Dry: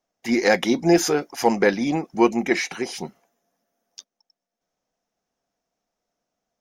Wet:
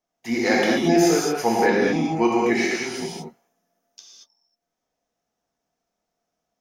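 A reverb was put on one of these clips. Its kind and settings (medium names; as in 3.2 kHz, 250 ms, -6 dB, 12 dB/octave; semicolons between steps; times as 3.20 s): gated-style reverb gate 260 ms flat, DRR -4.5 dB; trim -5 dB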